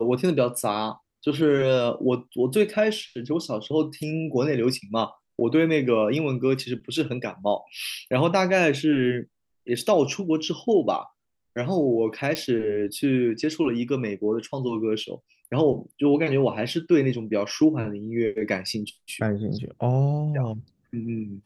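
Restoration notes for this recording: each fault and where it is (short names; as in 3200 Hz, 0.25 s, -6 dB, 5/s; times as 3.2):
12.35 pop -11 dBFS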